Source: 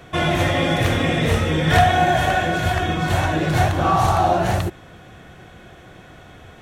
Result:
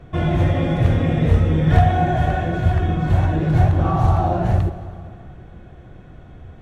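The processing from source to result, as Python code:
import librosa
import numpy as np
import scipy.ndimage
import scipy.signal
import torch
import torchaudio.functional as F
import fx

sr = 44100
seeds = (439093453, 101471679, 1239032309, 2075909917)

y = fx.tilt_eq(x, sr, slope=-3.5)
y = fx.rev_plate(y, sr, seeds[0], rt60_s=2.6, hf_ratio=0.8, predelay_ms=0, drr_db=11.0)
y = y * 10.0 ** (-6.5 / 20.0)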